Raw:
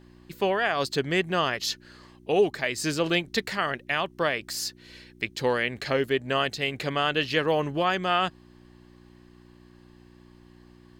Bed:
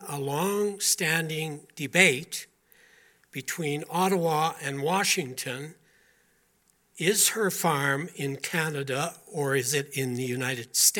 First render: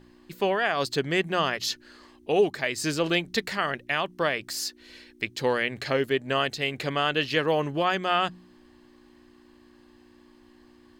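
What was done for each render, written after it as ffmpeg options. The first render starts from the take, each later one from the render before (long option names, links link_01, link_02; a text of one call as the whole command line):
ffmpeg -i in.wav -af "bandreject=frequency=60:width_type=h:width=4,bandreject=frequency=120:width_type=h:width=4,bandreject=frequency=180:width_type=h:width=4" out.wav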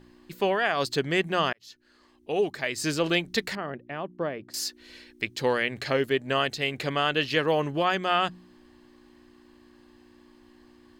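ffmpeg -i in.wav -filter_complex "[0:a]asettb=1/sr,asplit=3[link_01][link_02][link_03];[link_01]atrim=end=3.554[link_04];[link_02]atrim=start=3.55:end=4.54,asetpts=PTS-STARTPTS,afade=type=in:duration=0.004:curve=qsin,afade=type=out:start_time=0.986:duration=0.004:curve=qsin,bandpass=frequency=240:width_type=q:width=0.54[link_05];[link_03]atrim=start=4.536[link_06];[link_04][link_05]acrossfade=duration=0.004:curve1=hsin:curve2=qsin[link_07];[link_07][link_06]acrossfade=duration=0.004:curve1=qsin:curve2=hsin,asplit=2[link_08][link_09];[link_08]atrim=end=1.53,asetpts=PTS-STARTPTS,afade=type=out:start_time=1.526:duration=0.004:curve=hsin[link_10];[link_09]atrim=start=1.53,asetpts=PTS-STARTPTS,afade=type=in:duration=1.37[link_11];[link_10][link_11]concat=n=2:v=0:a=1" out.wav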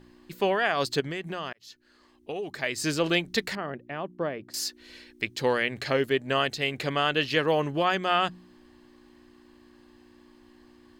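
ffmpeg -i in.wav -filter_complex "[0:a]asettb=1/sr,asplit=3[link_01][link_02][link_03];[link_01]atrim=end=1.004[link_04];[link_02]atrim=start=1:end=2.5,asetpts=PTS-STARTPTS,afade=type=in:duration=0.004:curve=qsin,afade=type=out:start_time=1.496:duration=0.004:curve=qsin,acompressor=threshold=-30dB:ratio=6:attack=3.2:release=140:knee=1:detection=peak[link_05];[link_03]atrim=start=2.496[link_06];[link_04][link_05]acrossfade=duration=0.004:curve1=hsin:curve2=qsin[link_07];[link_07][link_06]acrossfade=duration=0.004:curve1=qsin:curve2=hsin" out.wav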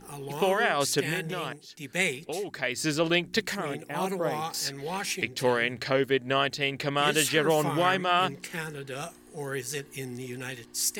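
ffmpeg -i in.wav -i bed.wav -filter_complex "[1:a]volume=-7.5dB[link_01];[0:a][link_01]amix=inputs=2:normalize=0" out.wav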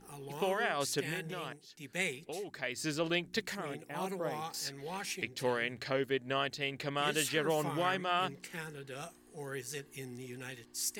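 ffmpeg -i in.wav -af "volume=-8dB" out.wav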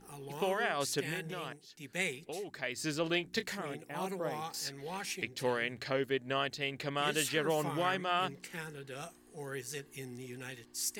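ffmpeg -i in.wav -filter_complex "[0:a]asettb=1/sr,asplit=3[link_01][link_02][link_03];[link_01]atrim=end=3.074[link_04];[link_02]atrim=start=3.07:end=3.63,asetpts=PTS-STARTPTS,afade=type=in:duration=0.004:curve=qsin,afade=type=out:start_time=0.556:duration=0.004:curve=qsin,asplit=2[link_05][link_06];[link_06]adelay=26,volume=-12dB[link_07];[link_05][link_07]amix=inputs=2:normalize=0,atrim=end_sample=24696[link_08];[link_03]atrim=start=3.626[link_09];[link_04][link_08]acrossfade=duration=0.004:curve1=hsin:curve2=qsin[link_10];[link_10][link_09]acrossfade=duration=0.004:curve1=qsin:curve2=hsin" out.wav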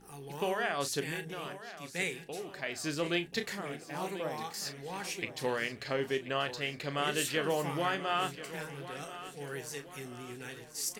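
ffmpeg -i in.wav -filter_complex "[0:a]asplit=2[link_01][link_02];[link_02]adelay=35,volume=-11dB[link_03];[link_01][link_03]amix=inputs=2:normalize=0,aecho=1:1:1034|2068|3102|4136|5170:0.2|0.0998|0.0499|0.0249|0.0125" out.wav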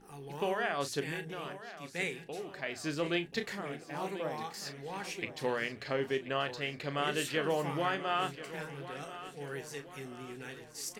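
ffmpeg -i in.wav -af "highshelf=frequency=5200:gain=-8,bandreject=frequency=60:width_type=h:width=6,bandreject=frequency=120:width_type=h:width=6,bandreject=frequency=180:width_type=h:width=6" out.wav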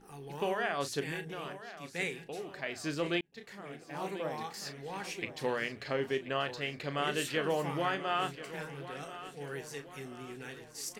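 ffmpeg -i in.wav -filter_complex "[0:a]asplit=2[link_01][link_02];[link_01]atrim=end=3.21,asetpts=PTS-STARTPTS,afade=type=out:start_time=3.206:duration=0.004:curve=hsin[link_03];[link_02]atrim=start=3.21,asetpts=PTS-STARTPTS,afade=type=in:duration=0.88[link_04];[link_03][link_04]concat=n=2:v=0:a=1" out.wav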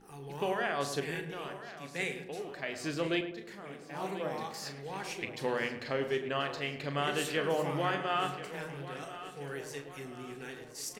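ffmpeg -i in.wav -filter_complex "[0:a]asplit=2[link_01][link_02];[link_02]adelay=43,volume=-13dB[link_03];[link_01][link_03]amix=inputs=2:normalize=0,asplit=2[link_04][link_05];[link_05]adelay=106,lowpass=frequency=1300:poles=1,volume=-8dB,asplit=2[link_06][link_07];[link_07]adelay=106,lowpass=frequency=1300:poles=1,volume=0.51,asplit=2[link_08][link_09];[link_09]adelay=106,lowpass=frequency=1300:poles=1,volume=0.51,asplit=2[link_10][link_11];[link_11]adelay=106,lowpass=frequency=1300:poles=1,volume=0.51,asplit=2[link_12][link_13];[link_13]adelay=106,lowpass=frequency=1300:poles=1,volume=0.51,asplit=2[link_14][link_15];[link_15]adelay=106,lowpass=frequency=1300:poles=1,volume=0.51[link_16];[link_04][link_06][link_08][link_10][link_12][link_14][link_16]amix=inputs=7:normalize=0" out.wav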